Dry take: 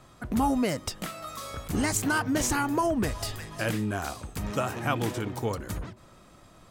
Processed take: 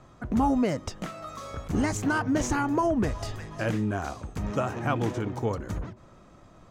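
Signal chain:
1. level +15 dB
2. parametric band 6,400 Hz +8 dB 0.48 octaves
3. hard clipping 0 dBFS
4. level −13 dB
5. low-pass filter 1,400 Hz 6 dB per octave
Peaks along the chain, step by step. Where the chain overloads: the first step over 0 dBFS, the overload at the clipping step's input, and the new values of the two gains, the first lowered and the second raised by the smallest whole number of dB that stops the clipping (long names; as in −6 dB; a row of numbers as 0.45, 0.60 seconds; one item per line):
+2.0, +4.5, 0.0, −13.0, −13.0 dBFS
step 1, 4.5 dB
step 1 +10 dB, step 4 −8 dB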